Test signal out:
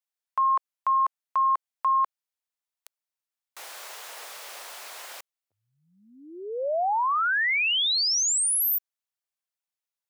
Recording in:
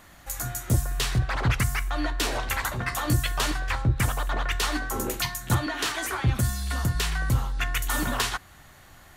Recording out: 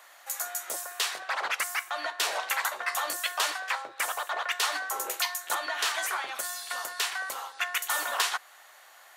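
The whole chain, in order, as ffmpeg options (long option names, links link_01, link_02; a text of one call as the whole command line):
ffmpeg -i in.wav -af "highpass=frequency=570:width=0.5412,highpass=frequency=570:width=1.3066" out.wav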